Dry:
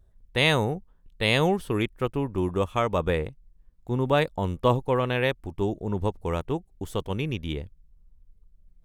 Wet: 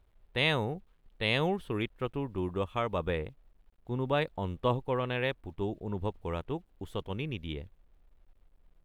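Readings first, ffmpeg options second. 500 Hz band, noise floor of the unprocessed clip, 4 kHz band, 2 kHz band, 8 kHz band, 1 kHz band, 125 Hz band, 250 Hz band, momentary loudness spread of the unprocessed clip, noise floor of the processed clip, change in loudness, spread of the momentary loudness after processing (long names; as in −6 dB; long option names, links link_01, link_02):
−7.0 dB, −60 dBFS, −6.0 dB, −6.0 dB, can't be measured, −7.0 dB, −7.0 dB, −7.0 dB, 11 LU, −67 dBFS, −6.5 dB, 11 LU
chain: -af "acrusher=bits=10:mix=0:aa=0.000001,highshelf=frequency=4500:width_type=q:width=1.5:gain=-6.5,volume=-7dB"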